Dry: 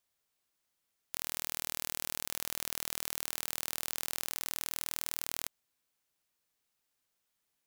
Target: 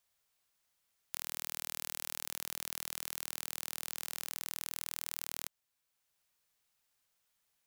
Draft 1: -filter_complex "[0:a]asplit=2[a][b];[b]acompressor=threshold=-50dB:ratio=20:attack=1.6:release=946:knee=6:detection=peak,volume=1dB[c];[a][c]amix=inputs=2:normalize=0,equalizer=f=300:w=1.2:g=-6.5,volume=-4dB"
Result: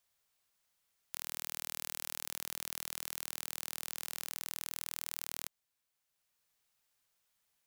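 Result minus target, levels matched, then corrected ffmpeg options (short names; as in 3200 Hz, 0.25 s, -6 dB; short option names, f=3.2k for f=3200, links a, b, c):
compressor: peak gain reduction +9.5 dB
-filter_complex "[0:a]asplit=2[a][b];[b]acompressor=threshold=-40dB:ratio=20:attack=1.6:release=946:knee=6:detection=peak,volume=1dB[c];[a][c]amix=inputs=2:normalize=0,equalizer=f=300:w=1.2:g=-6.5,volume=-4dB"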